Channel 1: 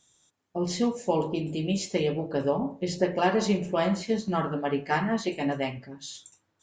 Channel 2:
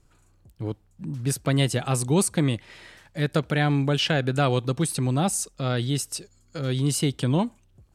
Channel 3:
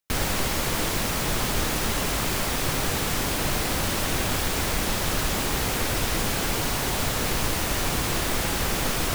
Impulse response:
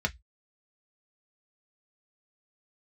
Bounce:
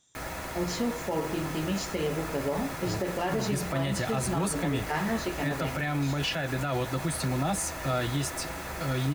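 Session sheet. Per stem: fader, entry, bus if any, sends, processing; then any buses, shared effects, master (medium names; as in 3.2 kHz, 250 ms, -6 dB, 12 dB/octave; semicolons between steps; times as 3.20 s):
-2.0 dB, 0.00 s, no send, none
-5.0 dB, 2.25 s, send -3.5 dB, tilt EQ +2 dB/octave; band-stop 480 Hz, Q 15
-11.5 dB, 0.05 s, send -7 dB, bass shelf 210 Hz -9 dB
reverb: on, RT60 0.10 s, pre-delay 3 ms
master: peak limiter -20 dBFS, peak gain reduction 11 dB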